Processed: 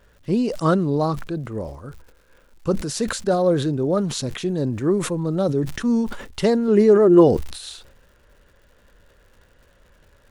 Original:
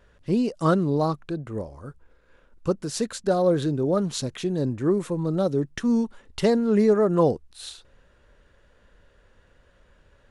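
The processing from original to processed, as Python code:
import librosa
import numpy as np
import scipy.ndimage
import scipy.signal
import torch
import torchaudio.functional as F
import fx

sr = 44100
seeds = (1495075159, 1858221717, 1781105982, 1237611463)

y = fx.dmg_crackle(x, sr, seeds[0], per_s=190.0, level_db=-51.0)
y = fx.small_body(y, sr, hz=(360.0, 2900.0), ring_ms=100, db=16, at=(6.68, 7.28))
y = fx.sustainer(y, sr, db_per_s=72.0)
y = F.gain(torch.from_numpy(y), 2.0).numpy()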